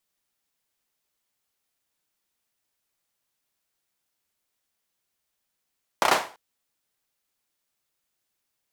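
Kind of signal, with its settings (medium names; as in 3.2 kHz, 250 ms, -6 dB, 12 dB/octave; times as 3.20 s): hand clap length 0.34 s, bursts 4, apart 31 ms, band 810 Hz, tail 0.36 s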